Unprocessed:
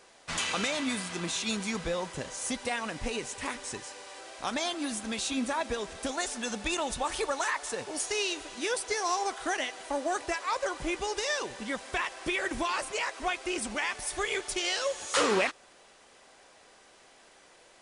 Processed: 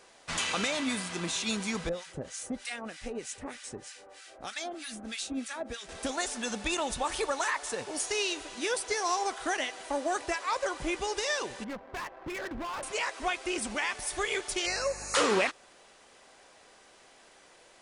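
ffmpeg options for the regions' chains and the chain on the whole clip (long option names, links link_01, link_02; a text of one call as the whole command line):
ffmpeg -i in.wav -filter_complex "[0:a]asettb=1/sr,asplit=3[link_01][link_02][link_03];[link_01]atrim=end=1.894[link_04];[link_02]atrim=start=1.89:end=5.89,asetpts=PTS-STARTPTS,afade=type=in:duration=0.004:curve=qsin,afade=type=out:start_time=3.996:duration=0.004:curve=qsin,equalizer=frequency=1000:width=6.9:gain=-12,acrossover=split=1200[link_05][link_06];[link_05]aeval=exprs='val(0)*(1-1/2+1/2*cos(2*PI*3.2*n/s))':channel_layout=same[link_07];[link_06]aeval=exprs='val(0)*(1-1/2-1/2*cos(2*PI*3.2*n/s))':channel_layout=same[link_08];[link_07][link_08]amix=inputs=2:normalize=0[link_09];[link_03]atrim=start=5.886[link_10];[link_04][link_09]acrossfade=duration=0.004:curve1=hsin:curve2=qsin[link_11];[link_11][link_10]acrossfade=duration=0.004:curve1=qsin:curve2=hsin,asettb=1/sr,asplit=3[link_12][link_13][link_14];[link_12]atrim=end=11.644[link_15];[link_13]atrim=start=11.64:end=12.83,asetpts=PTS-STARTPTS,afade=type=in:duration=0.004:curve=qsin,afade=type=out:start_time=1.186:duration=0.004:curve=qsin,lowpass=frequency=2000:poles=1,adynamicsmooth=sensitivity=5.5:basefreq=880,asoftclip=type=hard:threshold=-34dB[link_16];[link_14]atrim=start=12.826[link_17];[link_15][link_16]acrossfade=duration=0.004:curve1=hsin:curve2=qsin[link_18];[link_18][link_17]acrossfade=duration=0.004:curve1=qsin:curve2=hsin,asettb=1/sr,asplit=3[link_19][link_20][link_21];[link_19]atrim=end=14.664[link_22];[link_20]atrim=start=14.66:end=15.15,asetpts=PTS-STARTPTS,afade=type=in:duration=0.004:curve=qsin,afade=type=out:start_time=0.486:duration=0.004:curve=qsin,aeval=exprs='val(0)+0.00398*(sin(2*PI*50*n/s)+sin(2*PI*2*50*n/s)/2+sin(2*PI*3*50*n/s)/3+sin(2*PI*4*50*n/s)/4+sin(2*PI*5*50*n/s)/5)':channel_layout=same,asuperstop=centerf=3300:order=12:qfactor=2.7[link_23];[link_21]atrim=start=15.146[link_24];[link_22][link_23]acrossfade=duration=0.004:curve1=hsin:curve2=qsin[link_25];[link_25][link_24]acrossfade=duration=0.004:curve1=qsin:curve2=hsin" out.wav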